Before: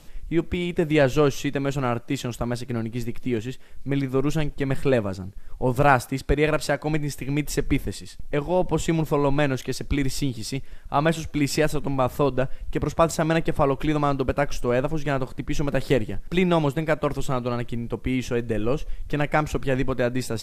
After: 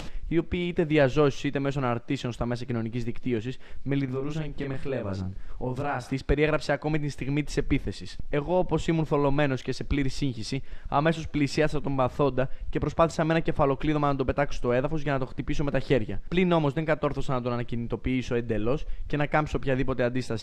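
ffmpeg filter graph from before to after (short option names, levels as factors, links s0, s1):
-filter_complex "[0:a]asettb=1/sr,asplit=3[s0][s1][s2];[s0]atrim=end=4.054[s3];[s1]atrim=start=4.05:end=6.13,asetpts=PTS-STARTPTS,afade=t=in:d=0.004:c=qsin,afade=t=out:st=2.076:d=0.004:c=qsin,acompressor=threshold=0.0316:ratio=2.5:attack=3.2:release=140:knee=1:detection=peak,asplit=2[s4][s5];[s5]adelay=32,volume=0.75[s6];[s4][s6]amix=inputs=2:normalize=0,atrim=end_sample=91728[s7];[s2]atrim=start=6.126[s8];[s3][s7]acrossfade=d=0.004:c1=hsin:c2=qsin[s9];[s9][s8]acrossfade=d=0.004:c1=qsin:c2=hsin,lowpass=4900,acompressor=mode=upward:threshold=0.0794:ratio=2.5,volume=0.75"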